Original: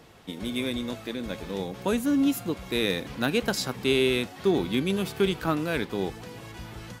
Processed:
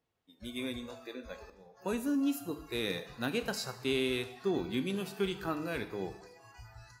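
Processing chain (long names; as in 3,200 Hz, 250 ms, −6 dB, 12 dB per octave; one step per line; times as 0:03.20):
noise reduction from a noise print of the clip's start 23 dB
0:01.37–0:01.77: volume swells 702 ms
coupled-rooms reverb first 0.73 s, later 1.9 s, DRR 8.5 dB
level −8.5 dB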